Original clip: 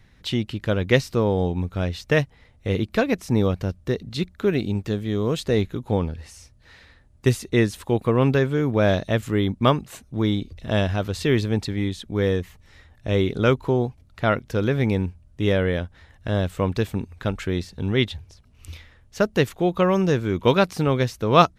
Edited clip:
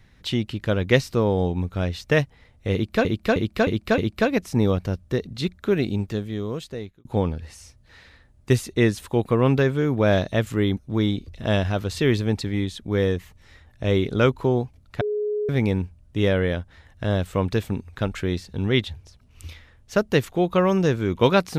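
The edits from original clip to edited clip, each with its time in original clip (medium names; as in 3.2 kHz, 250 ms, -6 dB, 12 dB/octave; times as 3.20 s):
2.74–3.05 s: loop, 5 plays
4.71–5.81 s: fade out
9.53–10.01 s: delete
14.25–14.73 s: bleep 419 Hz -22 dBFS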